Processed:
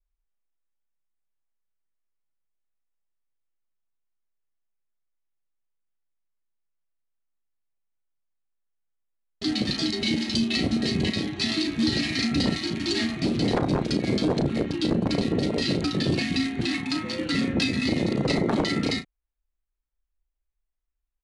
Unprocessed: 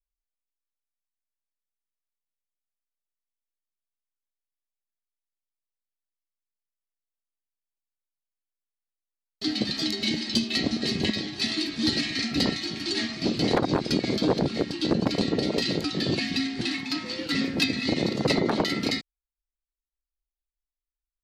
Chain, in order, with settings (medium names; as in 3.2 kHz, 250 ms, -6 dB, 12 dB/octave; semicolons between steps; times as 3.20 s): local Wiener filter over 9 samples; steep low-pass 11 kHz 96 dB/octave; bass shelf 140 Hz +8 dB; peak limiter -18.5 dBFS, peak gain reduction 8.5 dB; doubling 35 ms -10 dB; trim +3 dB